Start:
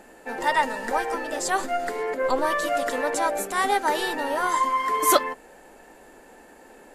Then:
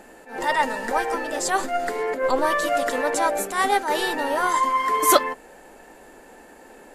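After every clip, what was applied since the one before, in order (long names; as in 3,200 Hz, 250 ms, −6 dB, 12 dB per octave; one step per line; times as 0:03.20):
level that may rise only so fast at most 140 dB per second
level +2.5 dB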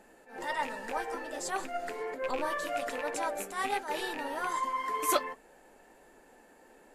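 loose part that buzzes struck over −34 dBFS, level −16 dBFS
flanger 1.3 Hz, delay 4.3 ms, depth 7.1 ms, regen −55%
level −7.5 dB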